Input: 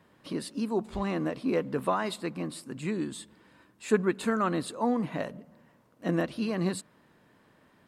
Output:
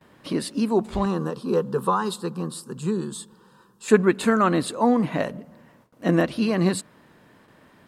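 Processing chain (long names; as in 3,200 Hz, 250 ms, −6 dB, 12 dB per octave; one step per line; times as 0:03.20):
noise gate with hold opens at −53 dBFS
0:01.05–0:03.88: phaser with its sweep stopped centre 430 Hz, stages 8
level +8 dB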